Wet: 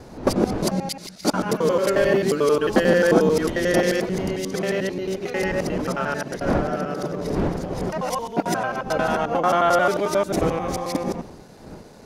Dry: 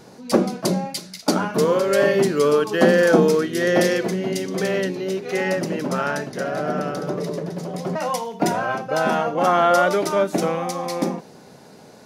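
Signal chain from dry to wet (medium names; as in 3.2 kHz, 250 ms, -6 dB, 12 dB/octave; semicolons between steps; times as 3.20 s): time reversed locally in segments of 89 ms; wind noise 420 Hz -32 dBFS; trim -1.5 dB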